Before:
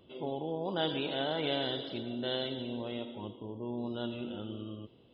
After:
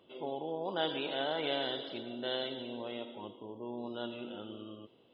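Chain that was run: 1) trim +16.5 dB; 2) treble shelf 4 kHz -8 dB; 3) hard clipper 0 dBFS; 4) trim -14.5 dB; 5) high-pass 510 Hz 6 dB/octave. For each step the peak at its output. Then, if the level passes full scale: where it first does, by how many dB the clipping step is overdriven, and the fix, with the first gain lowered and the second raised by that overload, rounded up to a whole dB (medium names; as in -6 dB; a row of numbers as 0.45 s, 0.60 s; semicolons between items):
-3.0 dBFS, -4.0 dBFS, -4.0 dBFS, -18.5 dBFS, -19.5 dBFS; nothing clips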